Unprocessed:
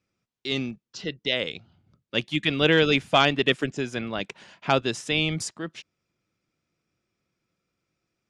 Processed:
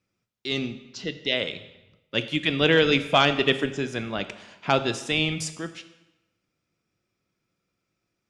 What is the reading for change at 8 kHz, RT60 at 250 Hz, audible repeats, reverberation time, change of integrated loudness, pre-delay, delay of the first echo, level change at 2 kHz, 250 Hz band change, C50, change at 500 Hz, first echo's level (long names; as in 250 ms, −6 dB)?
+0.5 dB, 0.95 s, no echo audible, 1.0 s, +0.5 dB, 10 ms, no echo audible, +0.5 dB, 0.0 dB, 12.5 dB, +0.5 dB, no echo audible